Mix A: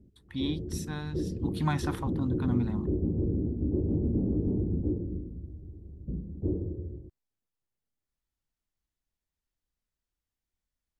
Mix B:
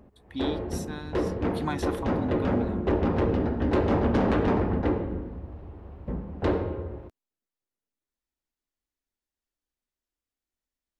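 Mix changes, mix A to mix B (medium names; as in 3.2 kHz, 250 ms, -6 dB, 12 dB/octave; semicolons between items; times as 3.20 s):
background: remove four-pole ladder low-pass 380 Hz, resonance 55%; master: add resonant low shelf 200 Hz -7 dB, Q 1.5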